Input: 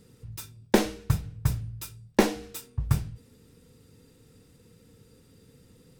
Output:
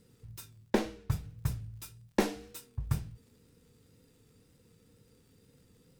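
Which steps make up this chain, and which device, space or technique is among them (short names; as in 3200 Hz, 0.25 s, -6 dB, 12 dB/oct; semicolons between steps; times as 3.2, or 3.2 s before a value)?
vinyl LP (wow and flutter; crackle; white noise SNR 45 dB); 0.7–1.12 high shelf 5300 Hz -9 dB; gain -7 dB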